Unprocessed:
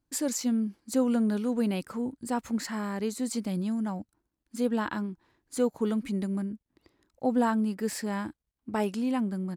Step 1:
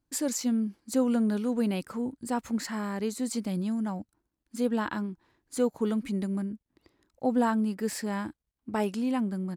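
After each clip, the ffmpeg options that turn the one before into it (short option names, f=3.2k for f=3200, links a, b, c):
-af anull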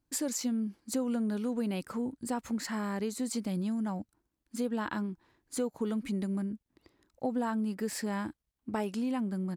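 -af "acompressor=threshold=-30dB:ratio=3"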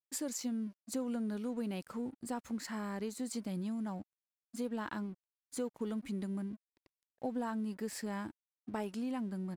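-af "aeval=exprs='sgn(val(0))*max(abs(val(0))-0.00158,0)':c=same,volume=-5dB"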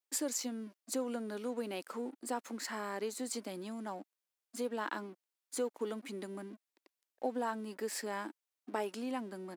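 -af "highpass=f=290:w=0.5412,highpass=f=290:w=1.3066,volume=4dB"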